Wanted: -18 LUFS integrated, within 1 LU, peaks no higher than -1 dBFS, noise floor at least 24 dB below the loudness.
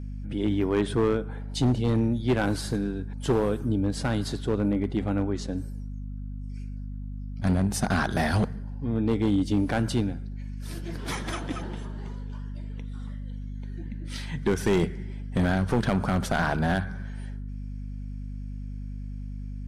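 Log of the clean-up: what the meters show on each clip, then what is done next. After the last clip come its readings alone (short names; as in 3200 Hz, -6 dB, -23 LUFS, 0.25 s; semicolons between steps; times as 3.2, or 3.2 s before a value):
clipped 1.1%; flat tops at -17.0 dBFS; hum 50 Hz; harmonics up to 250 Hz; hum level -33 dBFS; loudness -29.0 LUFS; peak -17.0 dBFS; loudness target -18.0 LUFS
-> clip repair -17 dBFS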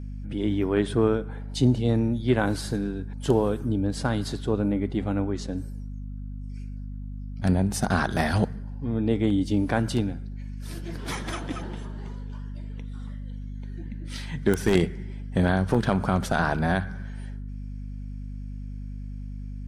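clipped 0.0%; hum 50 Hz; harmonics up to 250 Hz; hum level -33 dBFS
-> notches 50/100/150/200/250 Hz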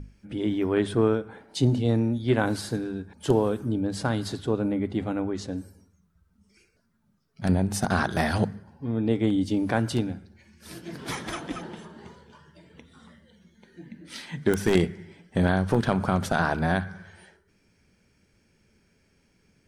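hum none; loudness -26.5 LUFS; peak -7.5 dBFS; loudness target -18.0 LUFS
-> gain +8.5 dB; limiter -1 dBFS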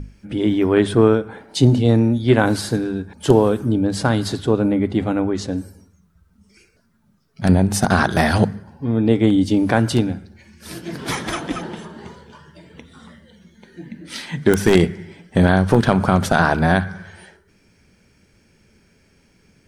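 loudness -18.0 LUFS; peak -1.0 dBFS; noise floor -58 dBFS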